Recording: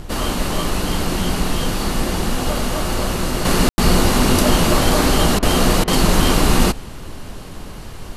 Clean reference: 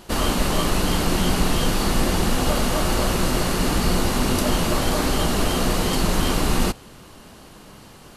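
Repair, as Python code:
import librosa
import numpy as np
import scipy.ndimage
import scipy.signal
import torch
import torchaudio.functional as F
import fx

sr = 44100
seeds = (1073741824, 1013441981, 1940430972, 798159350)

y = fx.fix_ambience(x, sr, seeds[0], print_start_s=7.42, print_end_s=7.92, start_s=3.69, end_s=3.78)
y = fx.fix_interpolate(y, sr, at_s=(5.39, 5.84), length_ms=35.0)
y = fx.noise_reduce(y, sr, print_start_s=7.42, print_end_s=7.92, reduce_db=13.0)
y = fx.fix_level(y, sr, at_s=3.45, step_db=-6.0)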